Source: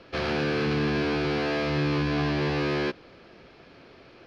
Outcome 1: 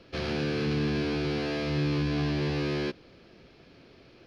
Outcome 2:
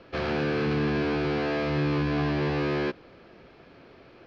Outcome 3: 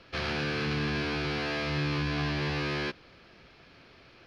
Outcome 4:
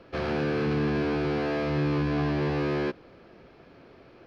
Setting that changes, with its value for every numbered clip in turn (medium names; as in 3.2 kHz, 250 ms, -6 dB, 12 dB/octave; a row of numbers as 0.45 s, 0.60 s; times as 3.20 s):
peaking EQ, frequency: 1.1 kHz, 12 kHz, 420 Hz, 4.5 kHz